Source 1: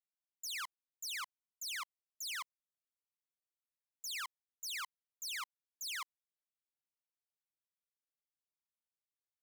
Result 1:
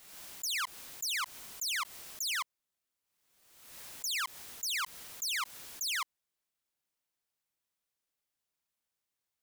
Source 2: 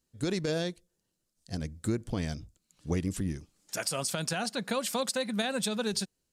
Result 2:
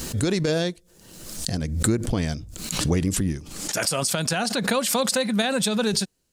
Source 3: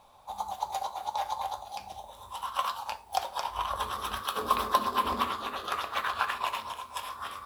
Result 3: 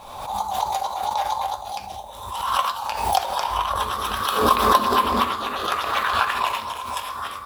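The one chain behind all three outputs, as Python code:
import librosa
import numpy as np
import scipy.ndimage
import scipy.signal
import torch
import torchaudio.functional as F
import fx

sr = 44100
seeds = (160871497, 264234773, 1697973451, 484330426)

y = fx.pre_swell(x, sr, db_per_s=51.0)
y = y * librosa.db_to_amplitude(7.5)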